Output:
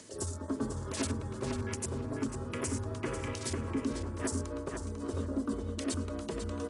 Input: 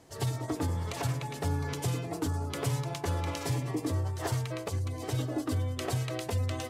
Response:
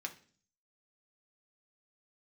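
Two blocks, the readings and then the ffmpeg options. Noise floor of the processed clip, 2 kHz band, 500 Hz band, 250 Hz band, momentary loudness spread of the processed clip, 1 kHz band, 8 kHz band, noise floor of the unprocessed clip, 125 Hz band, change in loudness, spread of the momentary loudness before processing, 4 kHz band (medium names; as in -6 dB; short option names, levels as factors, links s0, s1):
-42 dBFS, -3.0 dB, -1.0 dB, +1.0 dB, 3 LU, -5.5 dB, +1.0 dB, -41 dBFS, -8.0 dB, -3.0 dB, 2 LU, -4.5 dB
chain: -filter_complex "[0:a]highpass=f=140:w=0.5412,highpass=f=140:w=1.3066,aemphasis=mode=production:type=50kf,afwtdn=0.01,equalizer=f=800:w=4.5:g=-15,alimiter=limit=0.075:level=0:latency=1:release=311,acompressor=mode=upward:threshold=0.0141:ratio=2.5,afreqshift=-39,asplit=2[s0][s1];[s1]adelay=496,lowpass=f=3400:p=1,volume=0.668,asplit=2[s2][s3];[s3]adelay=496,lowpass=f=3400:p=1,volume=0.25,asplit=2[s4][s5];[s5]adelay=496,lowpass=f=3400:p=1,volume=0.25,asplit=2[s6][s7];[s7]adelay=496,lowpass=f=3400:p=1,volume=0.25[s8];[s0][s2][s4][s6][s8]amix=inputs=5:normalize=0,aresample=22050,aresample=44100" -ar 48000 -c:a ac3 -b:a 64k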